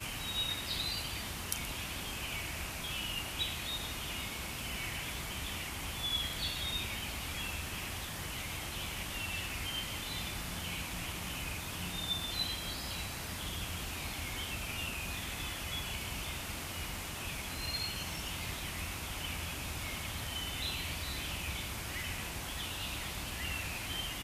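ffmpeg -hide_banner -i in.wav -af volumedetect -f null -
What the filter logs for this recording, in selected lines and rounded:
mean_volume: -39.0 dB
max_volume: -15.4 dB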